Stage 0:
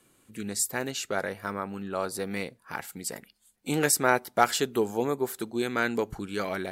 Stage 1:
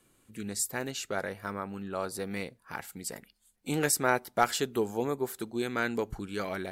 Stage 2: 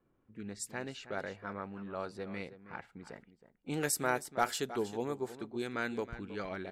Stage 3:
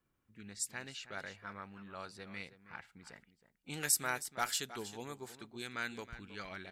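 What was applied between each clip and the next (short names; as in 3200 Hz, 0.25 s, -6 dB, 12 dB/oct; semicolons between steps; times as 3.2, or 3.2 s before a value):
low shelf 63 Hz +10.5 dB; gain -3.5 dB
echo 0.319 s -13.5 dB; low-pass opened by the level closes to 1200 Hz, open at -24 dBFS; gain -5.5 dB
passive tone stack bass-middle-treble 5-5-5; gain +9.5 dB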